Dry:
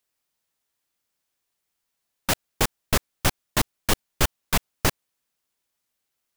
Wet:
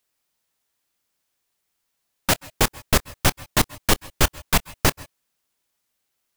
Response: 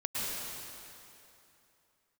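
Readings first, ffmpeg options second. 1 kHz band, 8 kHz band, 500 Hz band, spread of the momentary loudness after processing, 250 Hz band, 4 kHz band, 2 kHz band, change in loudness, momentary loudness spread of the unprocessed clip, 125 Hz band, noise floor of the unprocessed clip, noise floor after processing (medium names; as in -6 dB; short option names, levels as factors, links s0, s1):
+3.5 dB, +3.5 dB, +3.5 dB, 3 LU, +3.5 dB, +3.5 dB, +3.5 dB, +3.5 dB, 3 LU, +3.5 dB, -80 dBFS, -77 dBFS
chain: -filter_complex "[0:a]asplit=2[s0][s1];[1:a]atrim=start_sample=2205,atrim=end_sample=6174,adelay=26[s2];[s1][s2]afir=irnorm=-1:irlink=0,volume=0.1[s3];[s0][s3]amix=inputs=2:normalize=0,volume=1.5"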